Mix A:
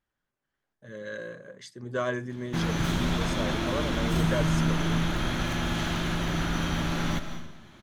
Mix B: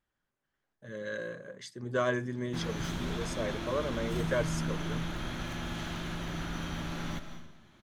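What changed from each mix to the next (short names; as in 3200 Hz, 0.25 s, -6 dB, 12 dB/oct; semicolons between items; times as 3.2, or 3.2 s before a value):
background -8.5 dB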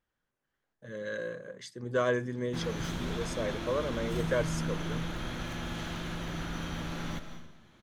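master: remove notch 490 Hz, Q 12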